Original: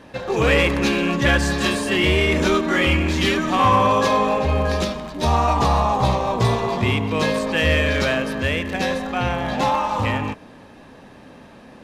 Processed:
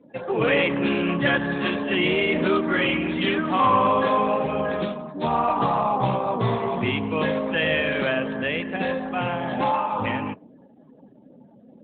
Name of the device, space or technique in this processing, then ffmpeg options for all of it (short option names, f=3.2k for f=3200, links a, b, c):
mobile call with aggressive noise cancelling: -af "highpass=f=120:w=0.5412,highpass=f=120:w=1.3066,afftdn=nr=33:nf=-38,volume=-2dB" -ar 8000 -c:a libopencore_amrnb -b:a 12200